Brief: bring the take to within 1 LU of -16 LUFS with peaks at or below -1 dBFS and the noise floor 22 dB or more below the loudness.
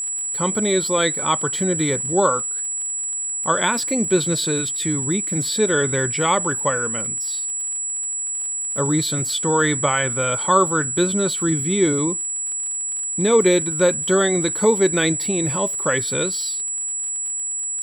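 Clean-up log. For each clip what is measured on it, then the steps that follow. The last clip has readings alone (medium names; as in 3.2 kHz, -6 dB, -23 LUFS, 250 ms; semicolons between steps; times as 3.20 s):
tick rate 52 per s; steady tone 7.8 kHz; tone level -23 dBFS; loudness -19.5 LUFS; peak level -3.5 dBFS; loudness target -16.0 LUFS
-> de-click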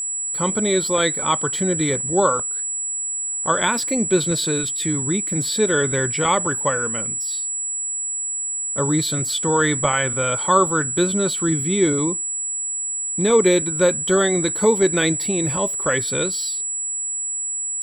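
tick rate 0.84 per s; steady tone 7.8 kHz; tone level -23 dBFS
-> band-stop 7.8 kHz, Q 30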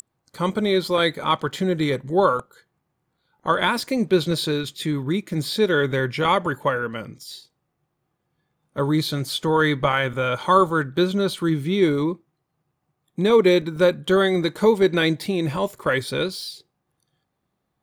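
steady tone not found; loudness -21.5 LUFS; peak level -4.5 dBFS; loudness target -16.0 LUFS
-> trim +5.5 dB; peak limiter -1 dBFS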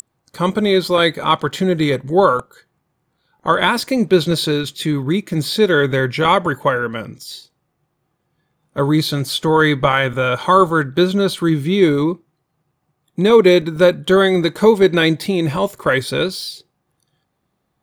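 loudness -16.0 LUFS; peak level -1.0 dBFS; noise floor -71 dBFS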